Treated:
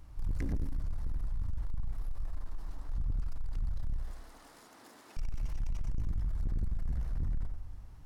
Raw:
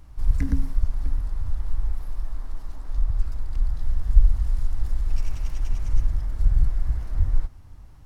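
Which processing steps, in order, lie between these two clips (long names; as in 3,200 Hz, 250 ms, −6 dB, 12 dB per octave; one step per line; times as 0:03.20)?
0:03.96–0:05.17: high-pass filter 270 Hz 24 dB per octave
on a send: feedback echo with a low-pass in the loop 88 ms, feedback 46%, low-pass 2,000 Hz, level −7.5 dB
on the sum: soft clipping −23.5 dBFS, distortion −7 dB
level −4.5 dB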